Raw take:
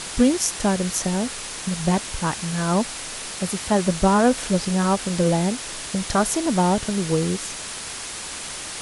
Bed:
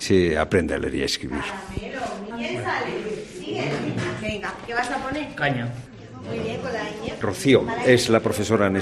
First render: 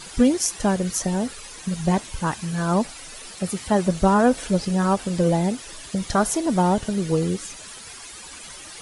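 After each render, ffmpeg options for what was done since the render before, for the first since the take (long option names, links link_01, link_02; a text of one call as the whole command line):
ffmpeg -i in.wav -af "afftdn=noise_reduction=12:noise_floor=-33" out.wav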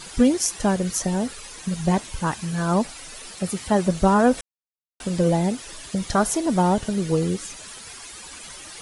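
ffmpeg -i in.wav -filter_complex "[0:a]asplit=3[link_01][link_02][link_03];[link_01]atrim=end=4.41,asetpts=PTS-STARTPTS,afade=type=out:start_time=4.406:duration=0.004:curve=hsin[link_04];[link_02]atrim=start=4.41:end=5,asetpts=PTS-STARTPTS,volume=0[link_05];[link_03]atrim=start=5,asetpts=PTS-STARTPTS,afade=type=in:duration=0.004:curve=hsin[link_06];[link_04][link_05][link_06]concat=n=3:v=0:a=1" out.wav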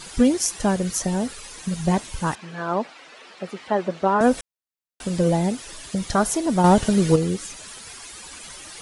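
ffmpeg -i in.wav -filter_complex "[0:a]asettb=1/sr,asplit=3[link_01][link_02][link_03];[link_01]atrim=end=2.354[link_04];[link_02]atrim=start=2.35:end=4.21,asetpts=PTS-STARTPTS,afade=type=in:duration=0.004:curve=qsin,afade=type=out:start_time=1.856:duration=0.004:curve=qsin,highpass=320,lowpass=2900[link_05];[link_03]atrim=start=4.206[link_06];[link_04][link_05]acrossfade=duration=0.004:curve1=hsin:curve2=qsin[link_07];[link_07][link_06]acrossfade=duration=0.004:curve1=qsin:curve2=hsin,asettb=1/sr,asplit=3[link_08][link_09][link_10];[link_08]atrim=end=6.644[link_11];[link_09]atrim=start=6.64:end=7.16,asetpts=PTS-STARTPTS,afade=type=in:duration=0.004:curve=qsin,afade=type=out:start_time=0.516:duration=0.004:curve=qsin,acontrast=50[link_12];[link_10]atrim=start=7.156[link_13];[link_11][link_12]acrossfade=duration=0.004:curve1=hsin:curve2=qsin[link_14];[link_14][link_13]acrossfade=duration=0.004:curve1=qsin:curve2=hsin" out.wav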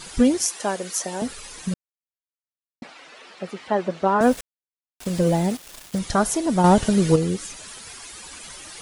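ffmpeg -i in.wav -filter_complex "[0:a]asettb=1/sr,asplit=3[link_01][link_02][link_03];[link_01]atrim=end=0.454[link_04];[link_02]atrim=start=0.45:end=1.22,asetpts=PTS-STARTPTS,afade=type=in:duration=0.004:curve=qsin,afade=type=out:start_time=0.766:duration=0.004:curve=qsin,highpass=400[link_05];[link_03]atrim=start=1.216[link_06];[link_04][link_05]acrossfade=duration=0.004:curve1=hsin:curve2=qsin[link_07];[link_07][link_06]acrossfade=duration=0.004:curve1=qsin:curve2=hsin,asettb=1/sr,asplit=3[link_08][link_09][link_10];[link_08]atrim=end=4.224[link_11];[link_09]atrim=start=4.22:end=5.99,asetpts=PTS-STARTPTS,afade=type=in:duration=0.004:curve=qsin,afade=type=out:start_time=1.766:duration=0.004:curve=qsin,aeval=exprs='val(0)*gte(abs(val(0)),0.0211)':channel_layout=same[link_12];[link_10]atrim=start=5.986[link_13];[link_11][link_12]acrossfade=duration=0.004:curve1=hsin:curve2=qsin[link_14];[link_14][link_13]acrossfade=duration=0.004:curve1=qsin:curve2=hsin,asplit=3[link_15][link_16][link_17];[link_15]atrim=end=1.74,asetpts=PTS-STARTPTS,afade=type=out:start_time=1.736:duration=0.004:curve=hsin[link_18];[link_16]atrim=start=1.74:end=2.82,asetpts=PTS-STARTPTS,volume=0[link_19];[link_17]atrim=start=2.82,asetpts=PTS-STARTPTS,afade=type=in:duration=0.004:curve=hsin[link_20];[link_18][link_19][link_20]concat=n=3:v=0:a=1" out.wav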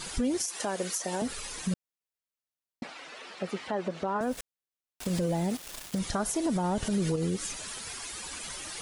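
ffmpeg -i in.wav -af "acompressor=threshold=-24dB:ratio=2,alimiter=limit=-20.5dB:level=0:latency=1:release=97" out.wav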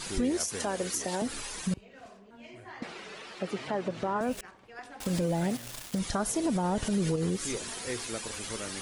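ffmpeg -i in.wav -i bed.wav -filter_complex "[1:a]volume=-21dB[link_01];[0:a][link_01]amix=inputs=2:normalize=0" out.wav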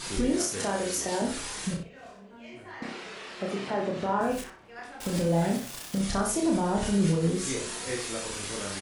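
ffmpeg -i in.wav -filter_complex "[0:a]asplit=2[link_01][link_02];[link_02]adelay=30,volume=-2.5dB[link_03];[link_01][link_03]amix=inputs=2:normalize=0,asplit=2[link_04][link_05];[link_05]adelay=61,lowpass=frequency=4800:poles=1,volume=-5.5dB,asplit=2[link_06][link_07];[link_07]adelay=61,lowpass=frequency=4800:poles=1,volume=0.26,asplit=2[link_08][link_09];[link_09]adelay=61,lowpass=frequency=4800:poles=1,volume=0.26[link_10];[link_04][link_06][link_08][link_10]amix=inputs=4:normalize=0" out.wav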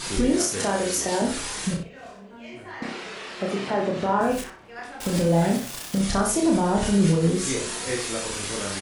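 ffmpeg -i in.wav -af "volume=5dB" out.wav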